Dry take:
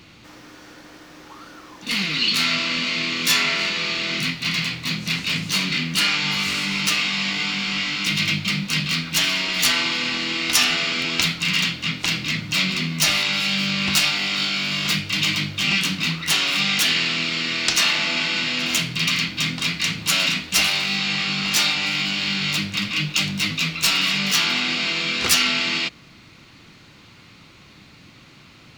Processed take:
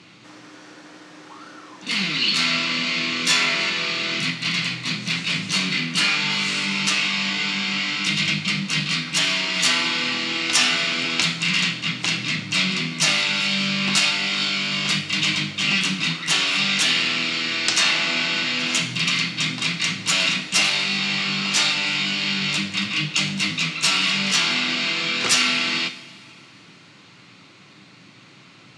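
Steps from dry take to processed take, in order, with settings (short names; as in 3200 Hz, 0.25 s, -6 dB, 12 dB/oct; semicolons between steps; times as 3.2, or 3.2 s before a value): elliptic band-pass 130–8800 Hz, stop band 60 dB; reverb, pre-delay 3 ms, DRR 9 dB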